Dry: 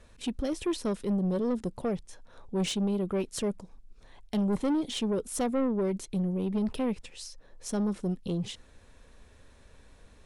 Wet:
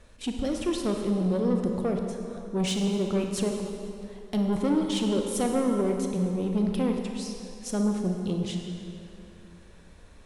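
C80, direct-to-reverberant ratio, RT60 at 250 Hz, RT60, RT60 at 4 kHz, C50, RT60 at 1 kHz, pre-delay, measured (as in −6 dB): 4.5 dB, 2.5 dB, 2.8 s, 2.6 s, 2.0 s, 3.5 dB, 2.7 s, 29 ms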